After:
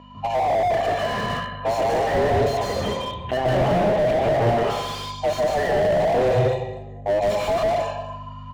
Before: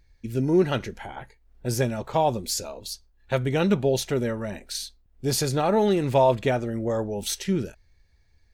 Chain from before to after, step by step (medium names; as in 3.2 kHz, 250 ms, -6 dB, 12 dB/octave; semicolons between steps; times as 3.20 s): every band turned upside down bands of 1 kHz; level-controlled noise filter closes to 2.6 kHz, open at -18 dBFS; tilt EQ +3 dB/octave; comb 1.7 ms, depth 95%; harmonic-percussive split percussive -15 dB; compression 10:1, threshold -32 dBFS, peak gain reduction 19 dB; 6.38–7.06 s: inverted gate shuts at -41 dBFS, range -33 dB; hum 50 Hz, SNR 13 dB; 2.57–4.39 s: LPC vocoder at 8 kHz pitch kept; delay 241 ms -17.5 dB; reverberation RT60 0.85 s, pre-delay 147 ms, DRR 0 dB; slew-rate limiter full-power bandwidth 34 Hz; trim +7.5 dB